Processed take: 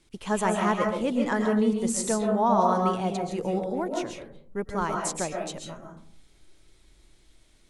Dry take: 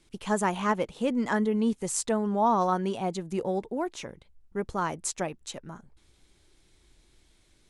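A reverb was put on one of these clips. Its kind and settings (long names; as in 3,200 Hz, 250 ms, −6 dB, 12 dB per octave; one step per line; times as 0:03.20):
comb and all-pass reverb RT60 0.55 s, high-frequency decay 0.35×, pre-delay 95 ms, DRR 1.5 dB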